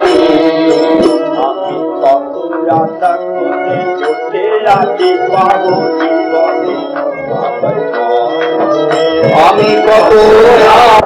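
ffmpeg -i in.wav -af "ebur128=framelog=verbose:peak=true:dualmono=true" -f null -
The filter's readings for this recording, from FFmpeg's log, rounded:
Integrated loudness:
  I:          -6.6 LUFS
  Threshold: -16.6 LUFS
Loudness range:
  LRA:         5.1 LU
  Threshold: -27.9 LUFS
  LRA low:    -9.7 LUFS
  LRA high:   -4.6 LUFS
True peak:
  Peak:       -0.8 dBFS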